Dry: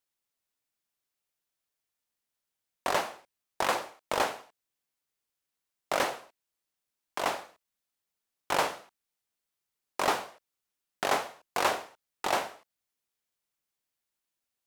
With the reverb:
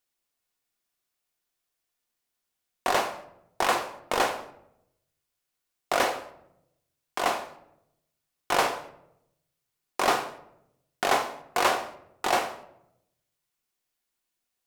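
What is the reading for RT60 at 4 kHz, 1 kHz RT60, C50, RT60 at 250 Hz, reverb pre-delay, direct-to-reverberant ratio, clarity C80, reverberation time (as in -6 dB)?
0.50 s, 0.70 s, 13.0 dB, 1.1 s, 3 ms, 6.5 dB, 15.5 dB, 0.80 s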